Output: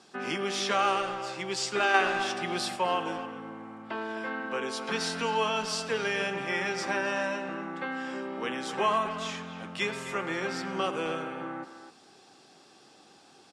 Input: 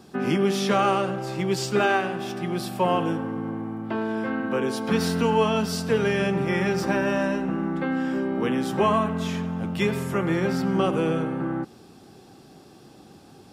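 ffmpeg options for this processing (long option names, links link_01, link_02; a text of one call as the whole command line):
ffmpeg -i in.wav -filter_complex "[0:a]highpass=frequency=1100:poles=1,asplit=2[link_01][link_02];[link_02]adelay=260,highpass=300,lowpass=3400,asoftclip=type=hard:threshold=-24dB,volume=-10dB[link_03];[link_01][link_03]amix=inputs=2:normalize=0,asettb=1/sr,asplit=3[link_04][link_05][link_06];[link_04]atrim=end=1.944[link_07];[link_05]atrim=start=1.94:end=2.76,asetpts=PTS-STARTPTS,afade=type=in:duration=0.004:curve=qsin,afade=type=out:start_time=0.816:duration=0.004:curve=qsin,acontrast=27[link_08];[link_06]atrim=start=2.756[link_09];[link_07][link_08]acrossfade=duration=0.004:curve1=hsin:curve2=qsin[link_10];[link_10][link_09]acrossfade=duration=0.004:curve1=qsin:curve2=hsin,lowpass=frequency=8900:width=0.5412,lowpass=frequency=8900:width=1.3066" out.wav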